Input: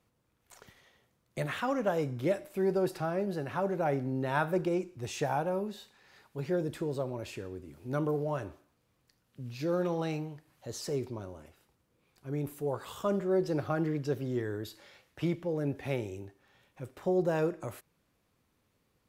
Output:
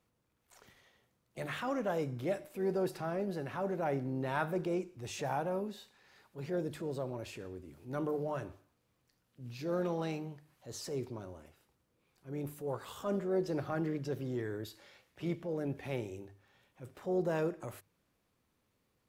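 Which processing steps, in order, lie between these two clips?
harmoniser +4 st -18 dB; notches 50/100/150 Hz; transient shaper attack -5 dB, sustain 0 dB; gain -3 dB

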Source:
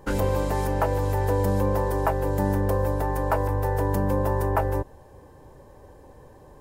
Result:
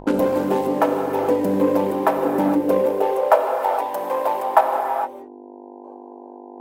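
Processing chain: Wiener smoothing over 25 samples; gate with hold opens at -38 dBFS; in parallel at -8 dB: soft clip -25.5 dBFS, distortion -10 dB; on the sum: high-pass sweep 250 Hz -> 730 Hz, 2.34–3.63; buzz 50 Hz, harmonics 20, -41 dBFS -3 dB/oct; notches 50/100/150/200 Hz; reverb removal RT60 1.6 s; non-linear reverb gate 0.48 s flat, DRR 2 dB; reverse; upward compressor, threshold -37 dBFS; reverse; gain +4.5 dB

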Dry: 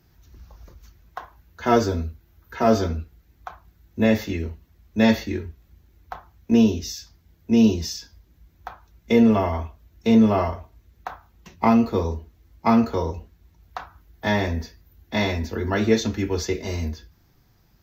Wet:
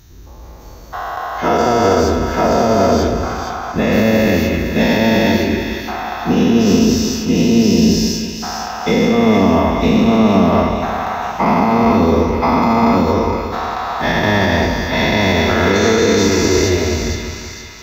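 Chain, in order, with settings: spectral dilation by 0.48 s; limiter -8.5 dBFS, peak gain reduction 8 dB; on a send: split-band echo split 1000 Hz, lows 0.182 s, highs 0.463 s, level -6.5 dB; on the sum: gain +3.5 dB

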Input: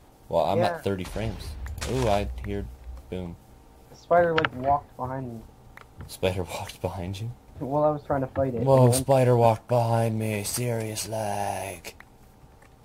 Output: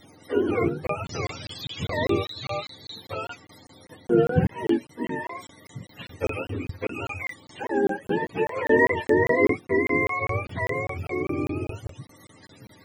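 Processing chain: spectrum mirrored in octaves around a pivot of 490 Hz; in parallel at -0.5 dB: compressor, threshold -36 dBFS, peak gain reduction 19.5 dB; on the sum: crackling interface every 0.20 s, samples 1024, zero, from 0.87

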